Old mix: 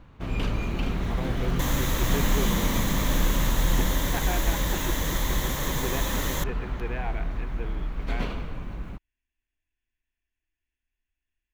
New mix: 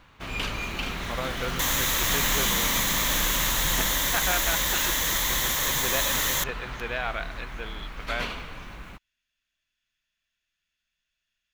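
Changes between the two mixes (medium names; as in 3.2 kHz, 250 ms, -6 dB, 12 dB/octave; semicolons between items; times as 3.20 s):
speech: remove static phaser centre 860 Hz, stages 8; master: add tilt shelf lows -8.5 dB, about 760 Hz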